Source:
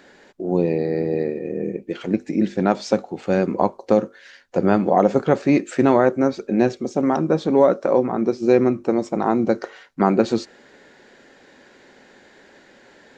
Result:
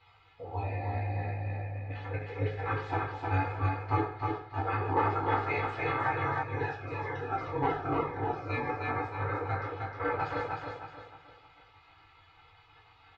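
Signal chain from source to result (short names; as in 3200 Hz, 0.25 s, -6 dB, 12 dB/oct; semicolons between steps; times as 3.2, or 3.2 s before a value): bin magnitudes rounded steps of 15 dB; dynamic EQ 260 Hz, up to -5 dB, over -29 dBFS, Q 0.8; spectral gate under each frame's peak -15 dB weak; wavefolder -19 dBFS; air absorption 410 m; comb 2.4 ms, depth 75%; feedback echo 0.309 s, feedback 38%, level -3.5 dB; reverb RT60 0.60 s, pre-delay 5 ms, DRR -6.5 dB; 6.43–8.7 cascading phaser falling 1.9 Hz; gain -5.5 dB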